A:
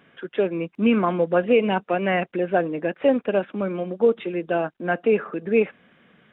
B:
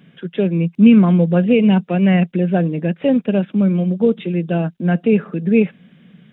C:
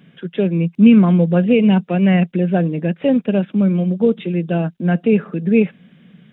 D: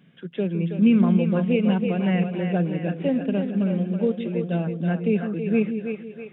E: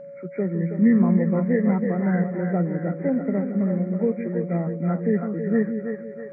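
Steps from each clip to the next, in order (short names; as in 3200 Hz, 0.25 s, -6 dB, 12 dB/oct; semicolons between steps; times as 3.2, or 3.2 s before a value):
EQ curve 100 Hz 0 dB, 170 Hz +13 dB, 300 Hz -1 dB, 1200 Hz -10 dB, 3700 Hz +1 dB; gain +5 dB
nothing audible
split-band echo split 370 Hz, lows 0.16 s, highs 0.324 s, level -6 dB; gain -8 dB
nonlinear frequency compression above 1000 Hz 1.5:1; whine 560 Hz -37 dBFS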